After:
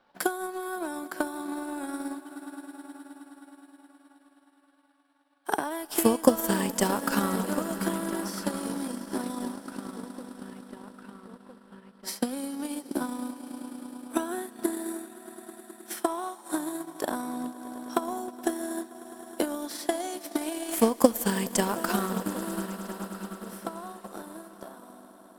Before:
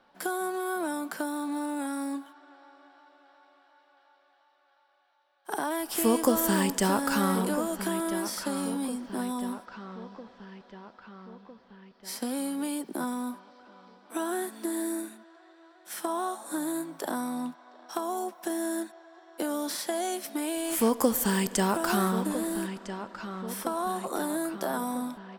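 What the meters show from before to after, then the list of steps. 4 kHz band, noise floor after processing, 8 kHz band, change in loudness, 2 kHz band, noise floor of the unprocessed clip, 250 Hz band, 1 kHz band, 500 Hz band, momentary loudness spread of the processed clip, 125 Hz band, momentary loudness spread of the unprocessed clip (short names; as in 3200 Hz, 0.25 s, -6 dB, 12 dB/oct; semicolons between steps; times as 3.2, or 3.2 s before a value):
-1.0 dB, -60 dBFS, -1.0 dB, -0.5 dB, -1.0 dB, -65 dBFS, -0.5 dB, -1.0 dB, +1.0 dB, 19 LU, -1.5 dB, 17 LU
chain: ending faded out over 3.82 s; swelling echo 0.105 s, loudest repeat 5, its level -16 dB; transient shaper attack +11 dB, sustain -6 dB; gain -3.5 dB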